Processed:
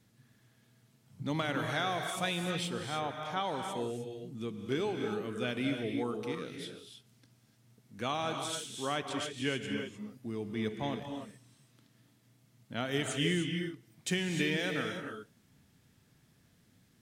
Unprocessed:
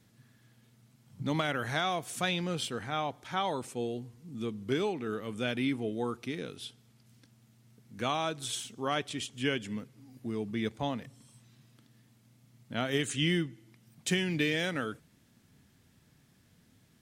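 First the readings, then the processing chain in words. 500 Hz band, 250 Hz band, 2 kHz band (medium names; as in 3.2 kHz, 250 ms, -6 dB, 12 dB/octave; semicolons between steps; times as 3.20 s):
-1.0 dB, -1.5 dB, -1.5 dB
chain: gated-style reverb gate 330 ms rising, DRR 4 dB; trim -3 dB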